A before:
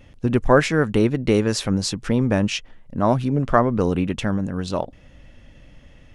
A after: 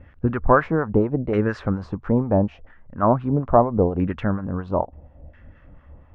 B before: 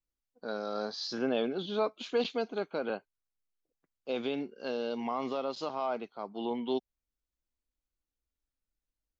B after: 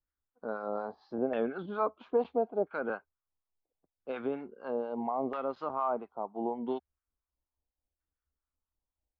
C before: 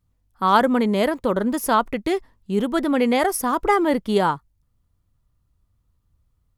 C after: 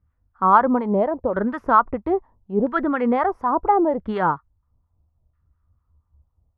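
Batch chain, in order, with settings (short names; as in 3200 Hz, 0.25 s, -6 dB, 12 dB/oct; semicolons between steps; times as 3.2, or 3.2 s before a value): bell 75 Hz +14 dB 0.32 oct; in parallel at -11.5 dB: soft clip -12.5 dBFS; on the sum: harmonic tremolo 4.2 Hz, depth 70%, crossover 880 Hz; LFO low-pass saw down 0.75 Hz 660–1700 Hz; gain -1 dB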